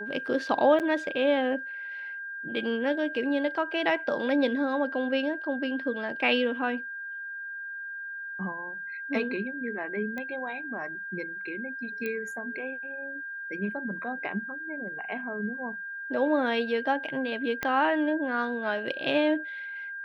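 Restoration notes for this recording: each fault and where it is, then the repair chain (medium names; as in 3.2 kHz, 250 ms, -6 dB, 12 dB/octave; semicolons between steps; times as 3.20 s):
whine 1.6 kHz -35 dBFS
0.79–0.80 s: dropout 8.3 ms
10.18 s: pop -23 dBFS
12.06 s: pop -20 dBFS
17.63 s: pop -14 dBFS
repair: de-click; band-stop 1.6 kHz, Q 30; interpolate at 0.79 s, 8.3 ms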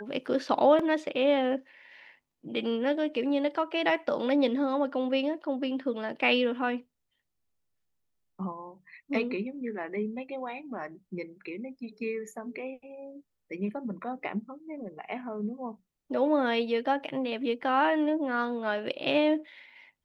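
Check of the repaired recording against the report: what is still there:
17.63 s: pop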